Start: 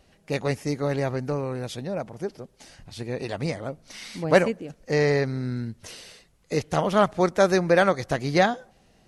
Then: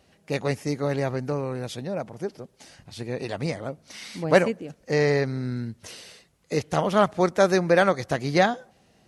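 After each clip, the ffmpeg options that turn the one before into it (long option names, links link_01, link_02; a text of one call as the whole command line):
ffmpeg -i in.wav -af "highpass=74" out.wav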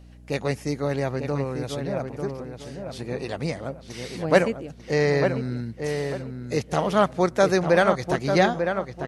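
ffmpeg -i in.wav -filter_complex "[0:a]aeval=exprs='val(0)+0.00501*(sin(2*PI*60*n/s)+sin(2*PI*2*60*n/s)/2+sin(2*PI*3*60*n/s)/3+sin(2*PI*4*60*n/s)/4+sin(2*PI*5*60*n/s)/5)':channel_layout=same,asplit=2[link_01][link_02];[link_02]adelay=895,lowpass=frequency=2200:poles=1,volume=-6dB,asplit=2[link_03][link_04];[link_04]adelay=895,lowpass=frequency=2200:poles=1,volume=0.3,asplit=2[link_05][link_06];[link_06]adelay=895,lowpass=frequency=2200:poles=1,volume=0.3,asplit=2[link_07][link_08];[link_08]adelay=895,lowpass=frequency=2200:poles=1,volume=0.3[link_09];[link_03][link_05][link_07][link_09]amix=inputs=4:normalize=0[link_10];[link_01][link_10]amix=inputs=2:normalize=0" out.wav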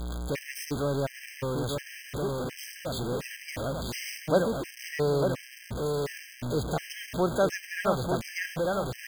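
ffmpeg -i in.wav -af "aeval=exprs='val(0)+0.5*0.0891*sgn(val(0))':channel_layout=same,afftfilt=real='re*gt(sin(2*PI*1.4*pts/sr)*(1-2*mod(floor(b*sr/1024/1600),2)),0)':imag='im*gt(sin(2*PI*1.4*pts/sr)*(1-2*mod(floor(b*sr/1024/1600),2)),0)':win_size=1024:overlap=0.75,volume=-7dB" out.wav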